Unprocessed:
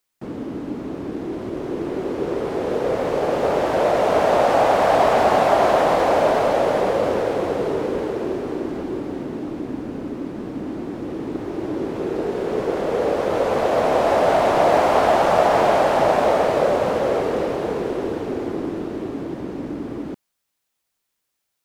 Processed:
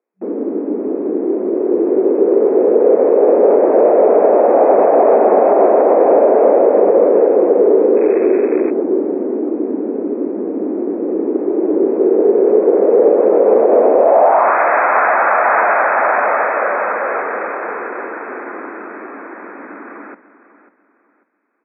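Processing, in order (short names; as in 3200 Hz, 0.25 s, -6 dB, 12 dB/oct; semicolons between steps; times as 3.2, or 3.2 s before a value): feedback echo 0.544 s, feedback 30%, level -15 dB; in parallel at -11 dB: hard clip -18 dBFS, distortion -9 dB; on the sum: band-pass sweep 420 Hz -> 1500 Hz, 13.94–14.58; 7.96–8.7 crackle 450/s -25 dBFS; FFT band-pass 190–2600 Hz; maximiser +13.5 dB; gain -1 dB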